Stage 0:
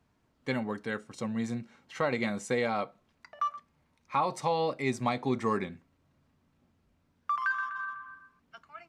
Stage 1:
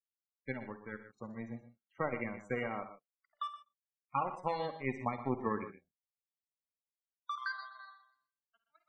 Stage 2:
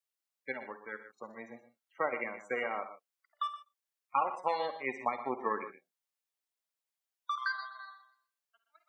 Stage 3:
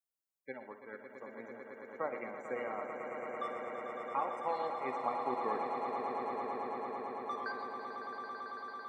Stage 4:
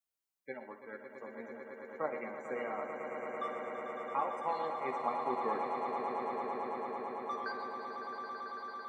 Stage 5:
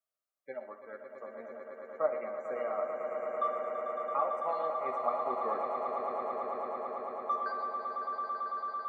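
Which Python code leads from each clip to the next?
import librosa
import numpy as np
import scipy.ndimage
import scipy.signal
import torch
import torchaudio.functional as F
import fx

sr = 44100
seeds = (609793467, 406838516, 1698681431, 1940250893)

y1 = fx.power_curve(x, sr, exponent=2.0)
y1 = fx.spec_topn(y1, sr, count=32)
y1 = fx.echo_multitap(y1, sr, ms=(51, 65, 70, 122, 148), db=(-16.5, -17.0, -17.0, -13.0, -17.5))
y2 = scipy.signal.sosfilt(scipy.signal.butter(2, 460.0, 'highpass', fs=sr, output='sos'), y1)
y2 = F.gain(torch.from_numpy(y2), 4.5).numpy()
y3 = fx.peak_eq(y2, sr, hz=2900.0, db=-10.0, octaves=2.2)
y3 = fx.echo_swell(y3, sr, ms=111, loudest=8, wet_db=-9.5)
y3 = F.gain(torch.from_numpy(y3), -2.5).numpy()
y4 = fx.doubler(y3, sr, ms=13.0, db=-7.5)
y5 = fx.small_body(y4, sr, hz=(630.0, 1200.0), ring_ms=25, db=16)
y5 = F.gain(torch.from_numpy(y5), -6.0).numpy()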